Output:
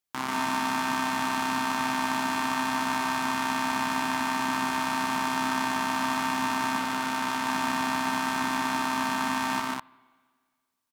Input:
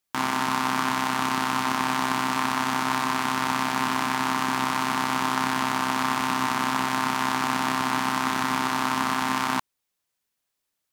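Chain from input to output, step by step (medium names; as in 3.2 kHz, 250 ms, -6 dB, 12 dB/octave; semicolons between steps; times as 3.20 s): loudspeakers at several distances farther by 49 m -2 dB, 69 m -3 dB; on a send at -23 dB: reverberation RT60 1.8 s, pre-delay 56 ms; 6.79–7.46 s: on the sum: transformer saturation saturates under 1.2 kHz; trim -6 dB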